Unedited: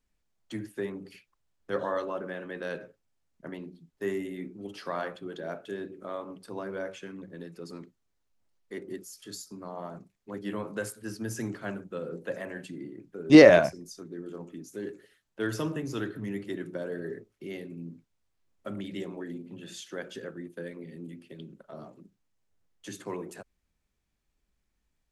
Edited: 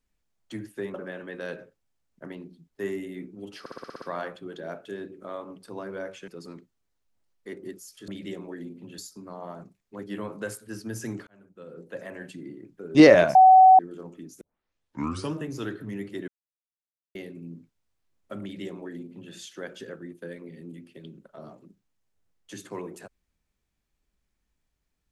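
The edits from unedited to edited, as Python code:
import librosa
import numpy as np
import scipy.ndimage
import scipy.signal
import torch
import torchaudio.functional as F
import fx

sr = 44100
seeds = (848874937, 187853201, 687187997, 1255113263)

y = fx.edit(x, sr, fx.cut(start_s=0.94, length_s=1.22),
    fx.stutter(start_s=4.82, slice_s=0.06, count=8),
    fx.cut(start_s=7.08, length_s=0.45),
    fx.fade_in_span(start_s=11.62, length_s=1.0),
    fx.bleep(start_s=13.7, length_s=0.44, hz=753.0, db=-9.5),
    fx.tape_start(start_s=14.76, length_s=0.92),
    fx.silence(start_s=16.63, length_s=0.87),
    fx.duplicate(start_s=18.77, length_s=0.9, to_s=9.33), tone=tone)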